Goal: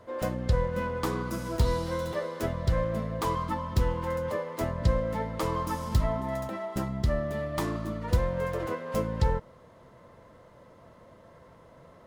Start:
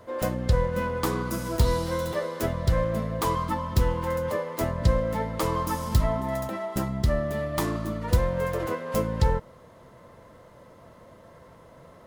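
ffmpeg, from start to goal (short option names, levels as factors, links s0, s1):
-af "highshelf=f=8700:g=-7.5,volume=0.708"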